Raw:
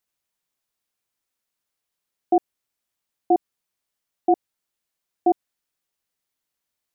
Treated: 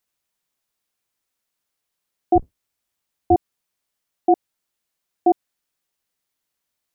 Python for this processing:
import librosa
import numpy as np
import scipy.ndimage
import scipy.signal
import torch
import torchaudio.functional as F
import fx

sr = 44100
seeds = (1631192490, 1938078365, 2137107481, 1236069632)

y = fx.octave_divider(x, sr, octaves=2, level_db=-3.0, at=(2.35, 3.35))
y = y * 10.0 ** (2.5 / 20.0)